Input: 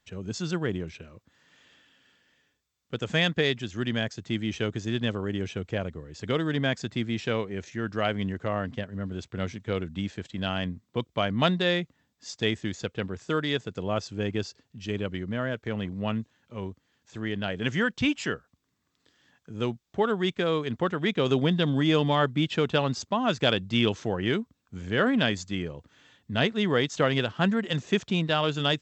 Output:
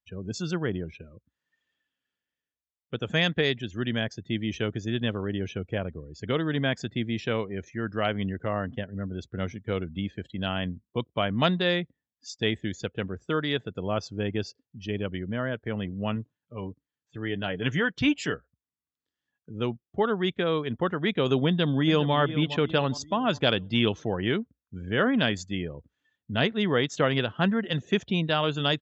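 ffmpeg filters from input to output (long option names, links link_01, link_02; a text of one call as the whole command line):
ffmpeg -i in.wav -filter_complex "[0:a]asettb=1/sr,asplit=3[link_01][link_02][link_03];[link_01]atrim=end=16.154[link_04];[link_02]atrim=start=16.15:end=18.34,asetpts=PTS-STARTPTS,afade=type=in:duration=0.004:curve=qsin,afade=type=out:start_time=2.186:duration=0.004:curve=qsin,aecho=1:1:6.8:0.39,atrim=end_sample=96579[link_05];[link_03]atrim=start=18.336[link_06];[link_04][link_05]acrossfade=duration=0.004:curve1=hsin:curve2=qsin[link_07];[link_07][link_06]acrossfade=duration=0.004:curve1=qsin:curve2=hsin,asplit=2[link_08][link_09];[link_09]afade=type=in:start_time=21.46:duration=0.01,afade=type=out:start_time=22.15:duration=0.01,aecho=0:1:410|820|1230|1640|2050:0.223872|0.111936|0.055968|0.027984|0.013992[link_10];[link_08][link_10]amix=inputs=2:normalize=0,afftdn=noise_reduction=24:noise_floor=-46,equalizer=frequency=62:width_type=o:width=0.33:gain=5.5" out.wav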